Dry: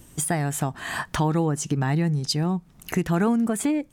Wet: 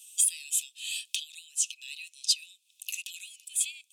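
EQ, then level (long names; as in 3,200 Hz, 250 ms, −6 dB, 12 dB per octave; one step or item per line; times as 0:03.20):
Chebyshev high-pass with heavy ripple 2,500 Hz, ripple 6 dB
high-shelf EQ 6,200 Hz −5.5 dB
+9.0 dB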